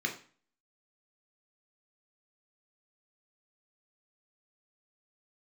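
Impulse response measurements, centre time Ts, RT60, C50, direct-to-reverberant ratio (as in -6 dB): 17 ms, 0.40 s, 10.5 dB, 1.5 dB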